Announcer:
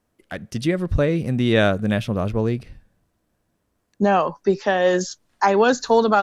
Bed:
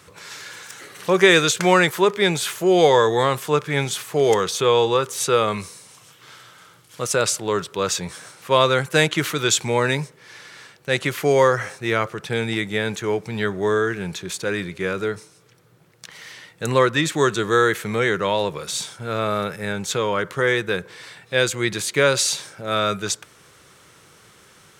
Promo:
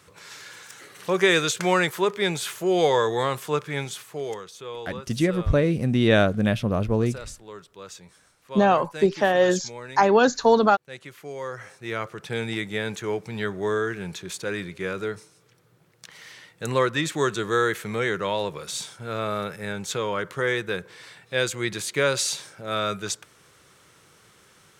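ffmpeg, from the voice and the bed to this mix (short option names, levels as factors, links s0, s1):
-filter_complex "[0:a]adelay=4550,volume=0.891[s0];[1:a]volume=2.66,afade=t=out:st=3.57:d=0.88:silence=0.211349,afade=t=in:st=11.4:d=0.98:silence=0.199526[s1];[s0][s1]amix=inputs=2:normalize=0"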